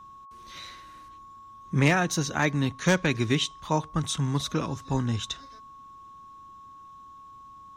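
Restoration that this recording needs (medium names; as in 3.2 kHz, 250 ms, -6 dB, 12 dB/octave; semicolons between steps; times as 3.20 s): clip repair -12.5 dBFS; band-stop 1.1 kHz, Q 30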